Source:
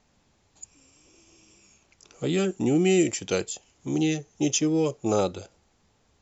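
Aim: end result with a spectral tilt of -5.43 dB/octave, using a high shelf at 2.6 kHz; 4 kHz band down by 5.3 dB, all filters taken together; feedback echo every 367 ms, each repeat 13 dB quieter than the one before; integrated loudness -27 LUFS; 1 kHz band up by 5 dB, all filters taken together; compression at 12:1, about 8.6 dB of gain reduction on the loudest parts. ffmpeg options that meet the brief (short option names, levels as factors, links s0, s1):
-af "equalizer=f=1000:t=o:g=8,highshelf=f=2600:g=-3.5,equalizer=f=4000:t=o:g=-5,acompressor=threshold=0.0562:ratio=12,aecho=1:1:367|734|1101:0.224|0.0493|0.0108,volume=1.58"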